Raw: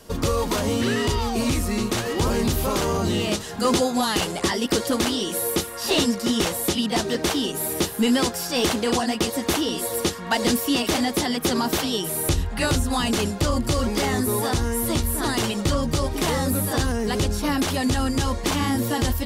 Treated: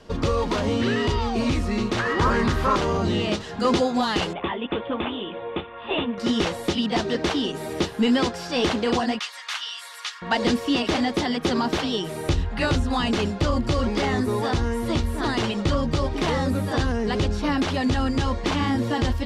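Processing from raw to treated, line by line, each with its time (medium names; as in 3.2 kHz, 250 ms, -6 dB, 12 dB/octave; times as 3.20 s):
1.99–2.76 s: high-order bell 1.4 kHz +9.5 dB 1.2 oct
4.33–6.18 s: rippled Chebyshev low-pass 3.6 kHz, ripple 6 dB
9.19–10.22 s: high-pass 1.2 kHz 24 dB/octave
whole clip: low-pass 4.1 kHz 12 dB/octave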